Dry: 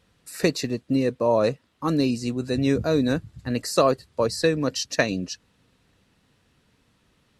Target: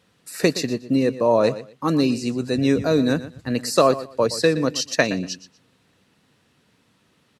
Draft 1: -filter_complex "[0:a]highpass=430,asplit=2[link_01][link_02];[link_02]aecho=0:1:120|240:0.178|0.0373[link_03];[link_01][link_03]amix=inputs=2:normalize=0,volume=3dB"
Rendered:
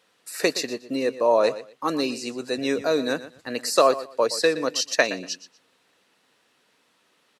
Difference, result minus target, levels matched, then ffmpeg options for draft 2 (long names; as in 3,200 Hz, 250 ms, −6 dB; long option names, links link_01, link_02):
125 Hz band −14.0 dB
-filter_complex "[0:a]highpass=120,asplit=2[link_01][link_02];[link_02]aecho=0:1:120|240:0.178|0.0373[link_03];[link_01][link_03]amix=inputs=2:normalize=0,volume=3dB"